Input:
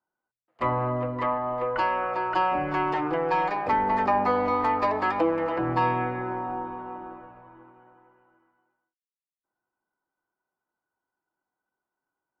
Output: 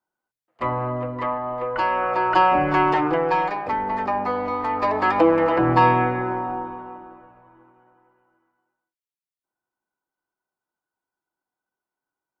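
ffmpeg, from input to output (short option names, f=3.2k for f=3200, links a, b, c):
-af "volume=16.5dB,afade=t=in:st=1.7:d=0.62:silence=0.473151,afade=t=out:st=2.87:d=0.83:silence=0.375837,afade=t=in:st=4.67:d=0.65:silence=0.354813,afade=t=out:st=5.89:d=1.18:silence=0.298538"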